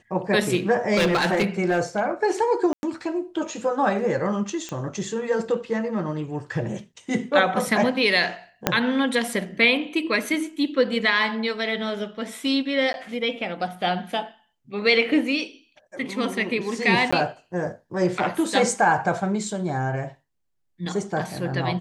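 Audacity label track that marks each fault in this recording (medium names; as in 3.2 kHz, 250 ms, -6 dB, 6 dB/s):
0.960000	2.010000	clipped -16 dBFS
2.730000	2.830000	dropout 101 ms
4.690000	4.690000	pop -17 dBFS
8.670000	8.670000	pop -2 dBFS
12.930000	12.940000	dropout 11 ms
17.110000	17.120000	dropout 15 ms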